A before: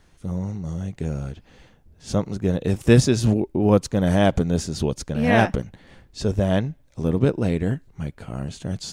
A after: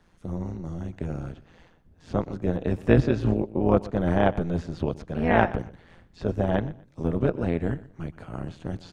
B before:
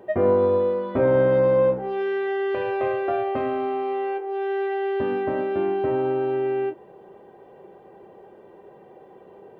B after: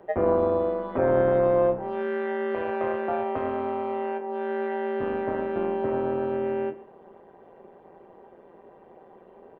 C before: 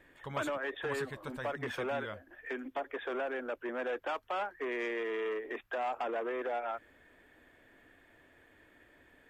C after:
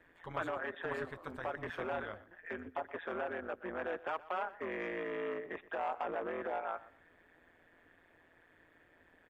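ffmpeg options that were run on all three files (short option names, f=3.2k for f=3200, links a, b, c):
-filter_complex "[0:a]tremolo=f=170:d=0.788,highshelf=f=4.9k:g=-6,acrossover=split=100|1500|3100[a][b][c][d];[b]crystalizer=i=9.5:c=0[e];[a][e][c][d]amix=inputs=4:normalize=0,acrossover=split=3500[f][g];[g]acompressor=threshold=-58dB:ratio=4:attack=1:release=60[h];[f][h]amix=inputs=2:normalize=0,aecho=1:1:122|244:0.119|0.0297,volume=-1.5dB"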